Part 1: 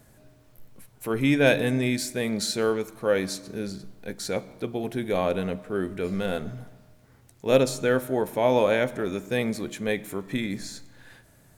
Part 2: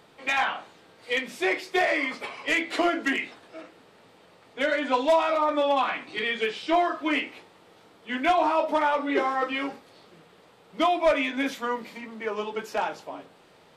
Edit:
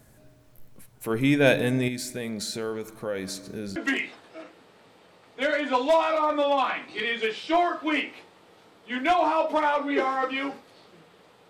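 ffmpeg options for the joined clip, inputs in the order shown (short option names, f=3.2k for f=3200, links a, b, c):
-filter_complex "[0:a]asettb=1/sr,asplit=3[a][b][c];[a]atrim=end=1.884[d];[b]atrim=start=1.88:end=3.76,asetpts=PTS-STARTPTS,afade=t=in:d=0.004:c=qsin,afade=t=out:st=1.876:d=0.004:c=qsin,acompressor=threshold=-30dB:ratio=2.5:attack=3.2:release=140:knee=1:detection=peak[e];[c]atrim=start=3.756[f];[d][e]acrossfade=d=0.004:c1=hsin:c2=qsin[g];[g][f]acrossfade=d=0.004:c1=qsin:c2=hsin,apad=whole_dur=11.49,atrim=end=11.49,atrim=end=3.762[h];[1:a]atrim=start=2.948:end=10.68[i];[h][i]acrossfade=d=0.004:c1=hsin:c2=hsin"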